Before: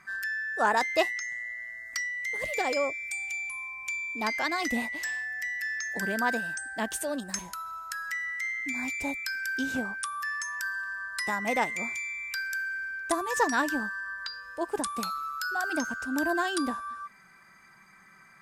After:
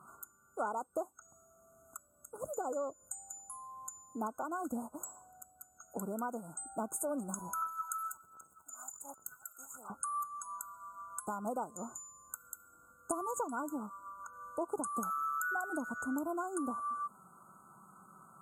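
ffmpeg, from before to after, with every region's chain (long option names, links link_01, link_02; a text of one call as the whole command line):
ffmpeg -i in.wav -filter_complex "[0:a]asettb=1/sr,asplit=3[link_01][link_02][link_03];[link_01]atrim=end=7.624[link_04];[link_02]atrim=start=7.62:end=9.9,asetpts=PTS-STARTPTS,afade=type=in:duration=0.004:curve=qsin,afade=type=out:start_time=2.276:duration=0.004:curve=qsin,highpass=1500,aphaser=in_gain=1:out_gain=1:delay=1.6:decay=0.71:speed=1.3:type=sinusoidal[link_05];[link_03]atrim=start=9.896[link_06];[link_04][link_05]acrossfade=duration=0.004:curve1=hsin:curve2=qsin[link_07];[link_07][link_06]acrossfade=duration=0.004:curve1=qsin:curve2=hsin,highpass=95,acompressor=threshold=-35dB:ratio=10,afftfilt=real='re*(1-between(b*sr/4096,1500,6500))':imag='im*(1-between(b*sr/4096,1500,6500))':win_size=4096:overlap=0.75,volume=2.5dB" out.wav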